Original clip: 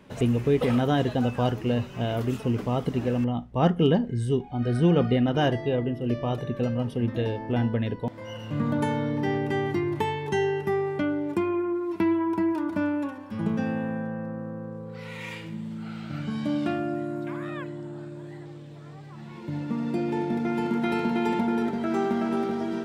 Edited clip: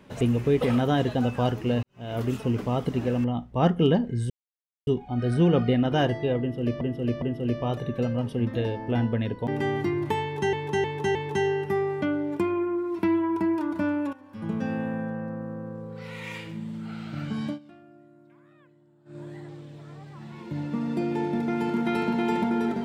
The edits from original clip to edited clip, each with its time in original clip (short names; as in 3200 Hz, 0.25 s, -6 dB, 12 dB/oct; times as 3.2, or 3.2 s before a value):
1.83–2.2 fade in quadratic
4.3 insert silence 0.57 s
5.83–6.24 loop, 3 plays
8.09–9.38 cut
10.12–10.43 loop, 4 plays
13.1–14.01 fade in equal-power, from -13 dB
16.43–18.15 dip -23 dB, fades 0.13 s